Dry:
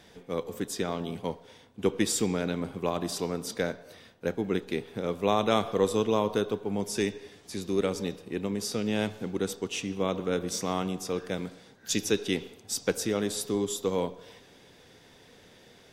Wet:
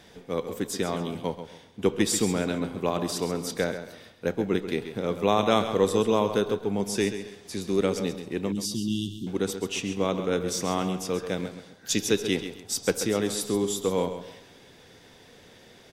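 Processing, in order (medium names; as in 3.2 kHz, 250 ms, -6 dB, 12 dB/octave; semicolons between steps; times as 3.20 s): 8.52–9.27 s: brick-wall FIR band-stop 390–2700 Hz; on a send: feedback delay 134 ms, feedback 29%, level -10.5 dB; on the sum: trim +2.5 dB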